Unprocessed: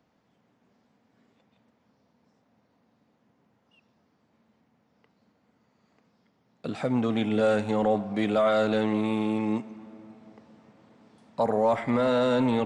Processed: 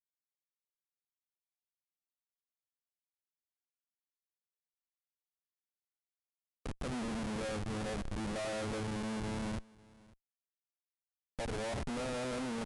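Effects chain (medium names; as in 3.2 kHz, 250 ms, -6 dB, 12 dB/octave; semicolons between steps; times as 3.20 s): Schmitt trigger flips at -28.5 dBFS; delay 549 ms -23.5 dB; trim -7.5 dB; MP3 160 kbps 24 kHz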